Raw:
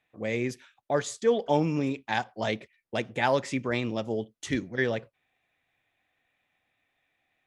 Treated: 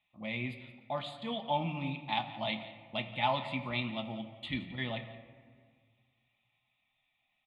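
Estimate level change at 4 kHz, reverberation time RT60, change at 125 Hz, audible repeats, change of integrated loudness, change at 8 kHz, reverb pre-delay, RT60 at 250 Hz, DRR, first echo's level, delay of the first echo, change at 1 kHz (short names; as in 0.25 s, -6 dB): +0.5 dB, 1.8 s, -5.5 dB, 1, -7.0 dB, under -25 dB, 5 ms, 2.1 s, 4.5 dB, -16.5 dB, 0.173 s, -3.0 dB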